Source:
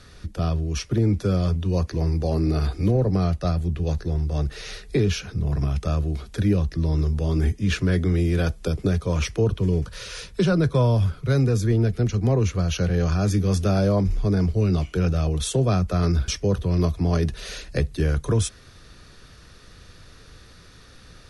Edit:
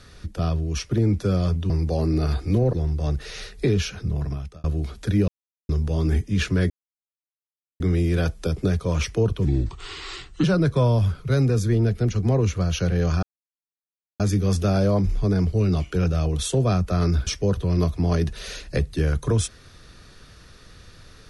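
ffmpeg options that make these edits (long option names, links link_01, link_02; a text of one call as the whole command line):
ffmpeg -i in.wav -filter_complex "[0:a]asplit=10[link_01][link_02][link_03][link_04][link_05][link_06][link_07][link_08][link_09][link_10];[link_01]atrim=end=1.702[link_11];[link_02]atrim=start=2.028:end=3.062[link_12];[link_03]atrim=start=4.038:end=5.95,asetpts=PTS-STARTPTS,afade=type=out:start_time=1.342:duration=0.57[link_13];[link_04]atrim=start=5.95:end=6.59,asetpts=PTS-STARTPTS,afade=type=in:duration=0.004:curve=hsin,afade=type=out:start_time=0.636:duration=0.004:curve=hsin[link_14];[link_05]atrim=start=6.59:end=7,asetpts=PTS-STARTPTS,volume=0[link_15];[link_06]atrim=start=7:end=8.01,asetpts=PTS-STARTPTS,afade=type=in:duration=0.004:curve=hsin,afade=type=out:start_time=1.006:duration=0.004:curve=hsin,apad=pad_dur=1.1[link_16];[link_07]atrim=start=8.01:end=9.664,asetpts=PTS-STARTPTS,afade=type=in:duration=0.004:curve=hsin[link_17];[link_08]atrim=start=9.66:end=10.42,asetpts=PTS-STARTPTS,asetrate=33957,aresample=44100,atrim=end_sample=43527,asetpts=PTS-STARTPTS[link_18];[link_09]atrim=start=10.416:end=13.21,asetpts=PTS-STARTPTS,afade=type=out:start_time=2.79:duration=0.004:curve=hsin,apad=pad_dur=0.97[link_19];[link_10]atrim=start=13.21,asetpts=PTS-STARTPTS,afade=type=in:duration=0.004:curve=hsin[link_20];[link_11][link_12]acrossfade=duration=0.004:curve1=hsin:curve2=hsin[link_21];[link_13][link_14][link_15][link_16][link_17]concat=n=5:v=0:a=1[link_22];[link_21][link_22]acrossfade=duration=0.004:curve1=hsin:curve2=hsin[link_23];[link_23][link_18]acrossfade=duration=0.004:curve1=hsin:curve2=hsin[link_24];[link_19][link_20]concat=n=2:v=0:a=1[link_25];[link_24][link_25]acrossfade=duration=0.004:curve1=hsin:curve2=hsin" out.wav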